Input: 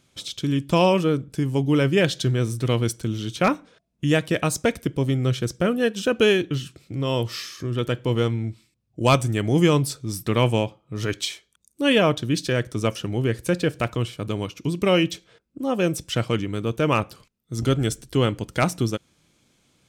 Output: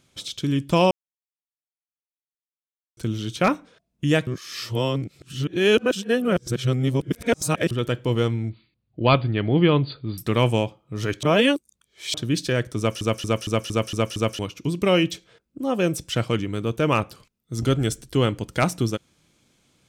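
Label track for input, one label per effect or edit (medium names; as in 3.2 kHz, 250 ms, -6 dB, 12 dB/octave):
0.910000	2.970000	mute
4.270000	7.710000	reverse
8.490000	10.180000	brick-wall FIR low-pass 4.8 kHz
11.230000	12.140000	reverse
12.780000	12.780000	stutter in place 0.23 s, 7 plays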